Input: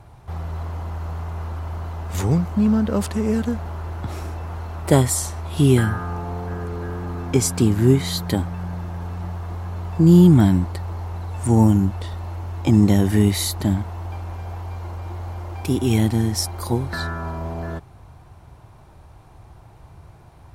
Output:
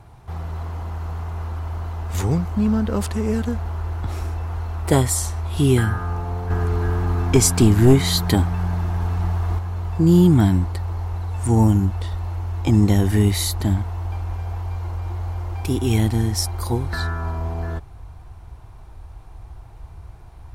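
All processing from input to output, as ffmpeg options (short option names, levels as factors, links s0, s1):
-filter_complex "[0:a]asettb=1/sr,asplit=3[s0][s1][s2];[s0]atrim=end=6.504[s3];[s1]atrim=start=6.5:end=9.59,asetpts=PTS-STARTPTS,afade=t=in:d=0.004:c=qsin,afade=t=out:st=3.086:d=0.004:c=qsin,volume=2.37,asoftclip=hard,volume=0.422,bandreject=f=520:w=11,acontrast=32[s4];[s2]atrim=start=9.586[s5];[s3][s4]acrossfade=d=0.004:c1=hsin:c2=qsin[s6];[s6][s5]acrossfade=d=0.004:c1=qsin:c2=hsin,bandreject=f=580:w=12,asubboost=boost=5:cutoff=65"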